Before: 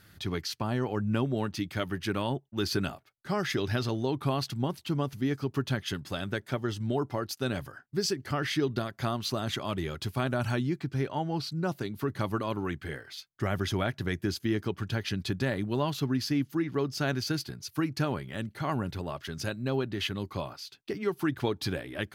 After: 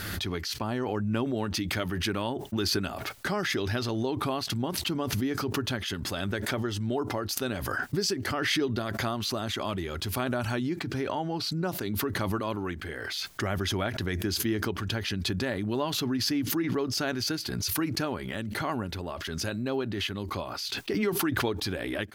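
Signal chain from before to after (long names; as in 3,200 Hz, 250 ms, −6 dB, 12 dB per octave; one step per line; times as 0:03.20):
parametric band 140 Hz −14 dB 0.29 octaves
background raised ahead of every attack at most 22 dB per second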